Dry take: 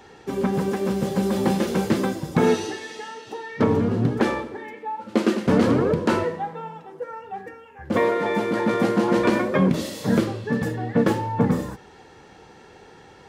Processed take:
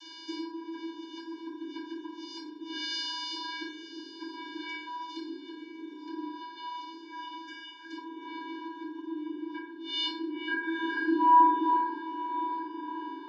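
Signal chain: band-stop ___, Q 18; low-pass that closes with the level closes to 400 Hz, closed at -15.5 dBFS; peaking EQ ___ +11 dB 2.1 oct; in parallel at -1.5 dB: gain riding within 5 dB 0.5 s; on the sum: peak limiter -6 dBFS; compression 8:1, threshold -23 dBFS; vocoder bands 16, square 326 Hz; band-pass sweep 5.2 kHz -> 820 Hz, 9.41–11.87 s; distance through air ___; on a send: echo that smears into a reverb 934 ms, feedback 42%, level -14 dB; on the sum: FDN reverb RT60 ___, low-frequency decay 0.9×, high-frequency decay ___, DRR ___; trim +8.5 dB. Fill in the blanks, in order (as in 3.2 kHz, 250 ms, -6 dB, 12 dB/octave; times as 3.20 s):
5.9 kHz, 4.6 kHz, 59 m, 0.83 s, 0.5×, -8.5 dB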